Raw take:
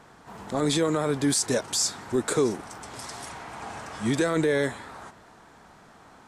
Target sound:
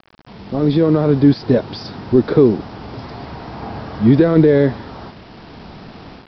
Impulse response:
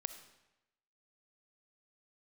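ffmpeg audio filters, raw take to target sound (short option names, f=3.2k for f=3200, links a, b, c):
-af "tiltshelf=f=730:g=9.5,dynaudnorm=f=470:g=3:m=13dB,aresample=11025,acrusher=bits=6:mix=0:aa=0.000001,aresample=44100"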